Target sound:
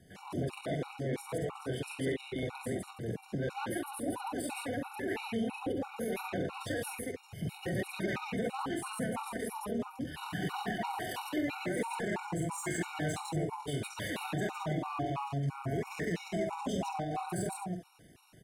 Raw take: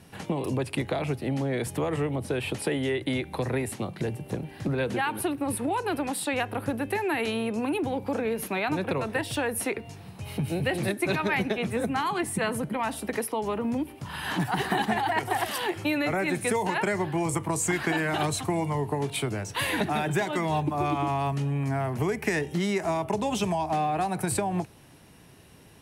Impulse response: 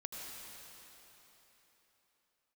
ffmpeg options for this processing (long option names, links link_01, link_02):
-filter_complex "[1:a]atrim=start_sample=2205,atrim=end_sample=4410[link_01];[0:a][link_01]afir=irnorm=-1:irlink=0,acrossover=split=450[link_02][link_03];[link_03]asoftclip=type=tanh:threshold=-29dB[link_04];[link_02][link_04]amix=inputs=2:normalize=0,aecho=1:1:52.48|221.6:0.708|0.891,asplit=2[link_05][link_06];[link_06]aeval=exprs='0.0562*(abs(mod(val(0)/0.0562+3,4)-2)-1)':channel_layout=same,volume=-10dB[link_07];[link_05][link_07]amix=inputs=2:normalize=0,atempo=1.4,afftfilt=real='re*gt(sin(2*PI*3*pts/sr)*(1-2*mod(floor(b*sr/1024/740),2)),0)':imag='im*gt(sin(2*PI*3*pts/sr)*(1-2*mod(floor(b*sr/1024/740),2)),0)':win_size=1024:overlap=0.75,volume=-5dB"